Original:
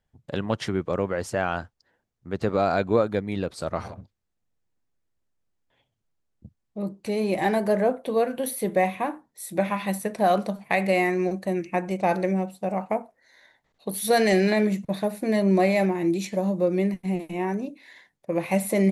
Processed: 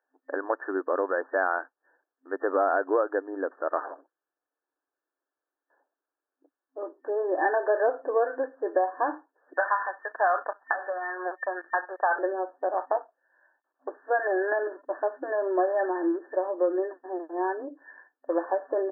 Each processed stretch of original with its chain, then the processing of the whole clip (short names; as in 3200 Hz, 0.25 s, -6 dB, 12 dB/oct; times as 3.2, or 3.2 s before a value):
9.53–12.19 HPF 1200 Hz + sample leveller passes 3
12.71–16.19 G.711 law mismatch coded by A + notch 450 Hz, Q 9.5
whole clip: tilt +3 dB/oct; compressor, threshold -22 dBFS; FFT band-pass 260–1800 Hz; gain +3.5 dB